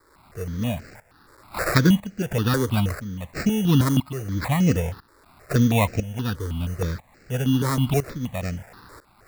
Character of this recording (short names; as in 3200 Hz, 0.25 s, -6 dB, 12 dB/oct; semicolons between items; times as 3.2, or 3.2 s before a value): a quantiser's noise floor 8-bit, dither triangular; tremolo saw up 1 Hz, depth 85%; aliases and images of a low sample rate 3100 Hz, jitter 0%; notches that jump at a steady rate 6.3 Hz 720–3500 Hz